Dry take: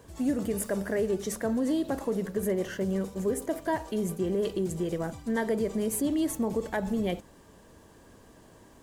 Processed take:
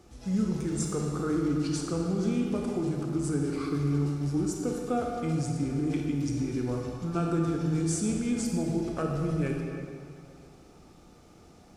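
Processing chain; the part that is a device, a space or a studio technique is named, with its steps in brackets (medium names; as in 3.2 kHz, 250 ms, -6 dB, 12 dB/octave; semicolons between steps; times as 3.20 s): slowed and reverbed (tape speed -25%; reverberation RT60 2.5 s, pre-delay 27 ms, DRR 0.5 dB); trim -2.5 dB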